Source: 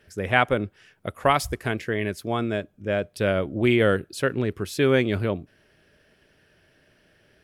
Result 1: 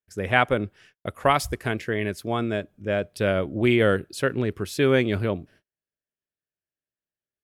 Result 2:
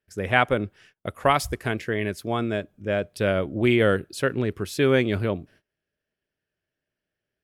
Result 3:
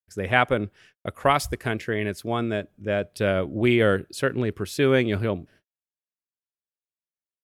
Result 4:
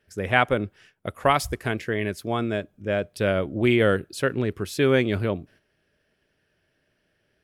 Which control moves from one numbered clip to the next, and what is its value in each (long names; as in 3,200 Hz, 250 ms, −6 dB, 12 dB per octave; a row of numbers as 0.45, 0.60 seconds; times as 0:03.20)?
noise gate, range: −39, −25, −51, −10 decibels